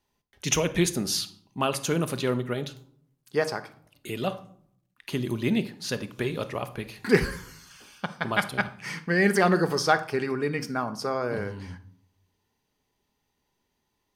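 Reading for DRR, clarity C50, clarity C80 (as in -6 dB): 10.0 dB, 15.5 dB, 20.0 dB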